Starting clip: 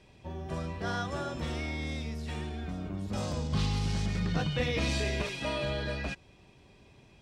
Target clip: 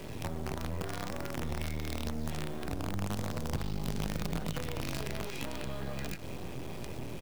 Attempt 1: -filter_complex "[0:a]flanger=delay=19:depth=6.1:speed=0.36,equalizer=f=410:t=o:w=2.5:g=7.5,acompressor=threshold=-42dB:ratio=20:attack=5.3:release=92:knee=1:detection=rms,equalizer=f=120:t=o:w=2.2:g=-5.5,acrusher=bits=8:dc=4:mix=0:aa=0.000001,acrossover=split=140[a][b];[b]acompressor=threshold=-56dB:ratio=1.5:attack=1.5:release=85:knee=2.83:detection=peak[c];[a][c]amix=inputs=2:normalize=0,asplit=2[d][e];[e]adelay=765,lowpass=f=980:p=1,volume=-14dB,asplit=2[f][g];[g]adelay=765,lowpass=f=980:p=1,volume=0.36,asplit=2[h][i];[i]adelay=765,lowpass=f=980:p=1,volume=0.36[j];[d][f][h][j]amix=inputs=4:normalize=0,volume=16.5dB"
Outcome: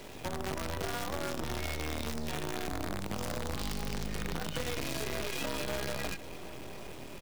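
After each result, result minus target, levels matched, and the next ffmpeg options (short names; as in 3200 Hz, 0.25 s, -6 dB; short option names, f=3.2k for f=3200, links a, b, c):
compressor: peak gain reduction -6 dB; 125 Hz band -4.5 dB
-filter_complex "[0:a]flanger=delay=19:depth=6.1:speed=0.36,equalizer=f=410:t=o:w=2.5:g=7.5,acompressor=threshold=-48.5dB:ratio=20:attack=5.3:release=92:knee=1:detection=rms,equalizer=f=120:t=o:w=2.2:g=-5.5,acrusher=bits=8:dc=4:mix=0:aa=0.000001,acrossover=split=140[a][b];[b]acompressor=threshold=-56dB:ratio=1.5:attack=1.5:release=85:knee=2.83:detection=peak[c];[a][c]amix=inputs=2:normalize=0,asplit=2[d][e];[e]adelay=765,lowpass=f=980:p=1,volume=-14dB,asplit=2[f][g];[g]adelay=765,lowpass=f=980:p=1,volume=0.36,asplit=2[h][i];[i]adelay=765,lowpass=f=980:p=1,volume=0.36[j];[d][f][h][j]amix=inputs=4:normalize=0,volume=16.5dB"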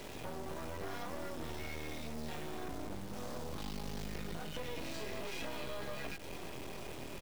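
125 Hz band -5.0 dB
-filter_complex "[0:a]flanger=delay=19:depth=6.1:speed=0.36,equalizer=f=410:t=o:w=2.5:g=7.5,acompressor=threshold=-48.5dB:ratio=20:attack=5.3:release=92:knee=1:detection=rms,equalizer=f=120:t=o:w=2.2:g=6.5,acrusher=bits=8:dc=4:mix=0:aa=0.000001,acrossover=split=140[a][b];[b]acompressor=threshold=-56dB:ratio=1.5:attack=1.5:release=85:knee=2.83:detection=peak[c];[a][c]amix=inputs=2:normalize=0,asplit=2[d][e];[e]adelay=765,lowpass=f=980:p=1,volume=-14dB,asplit=2[f][g];[g]adelay=765,lowpass=f=980:p=1,volume=0.36,asplit=2[h][i];[i]adelay=765,lowpass=f=980:p=1,volume=0.36[j];[d][f][h][j]amix=inputs=4:normalize=0,volume=16.5dB"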